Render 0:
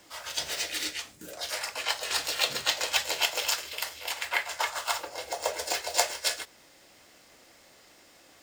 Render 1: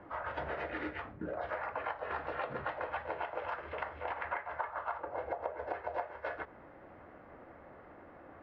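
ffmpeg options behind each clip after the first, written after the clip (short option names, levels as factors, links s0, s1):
-af "lowpass=f=1500:w=0.5412,lowpass=f=1500:w=1.3066,equalizer=f=82:t=o:w=1:g=5,acompressor=threshold=0.00891:ratio=12,volume=2.24"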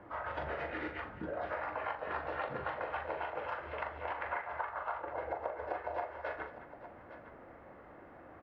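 -af "aecho=1:1:41|215|860:0.447|0.188|0.2,volume=0.891"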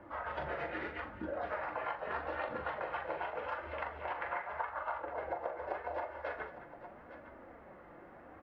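-af "flanger=delay=3.3:depth=2.6:regen=-38:speed=0.82:shape=sinusoidal,volume=1.5"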